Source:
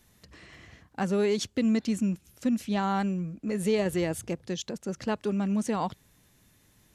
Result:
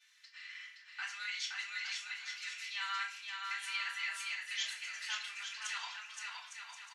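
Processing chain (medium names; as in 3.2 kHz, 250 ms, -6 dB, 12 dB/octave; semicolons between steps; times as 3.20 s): Bessel high-pass 2.7 kHz, order 6; level held to a coarse grid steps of 10 dB; tape spacing loss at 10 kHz 28 dB; bouncing-ball echo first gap 520 ms, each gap 0.65×, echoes 5; FDN reverb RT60 0.42 s, high-frequency decay 0.8×, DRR -10 dB; trim +8 dB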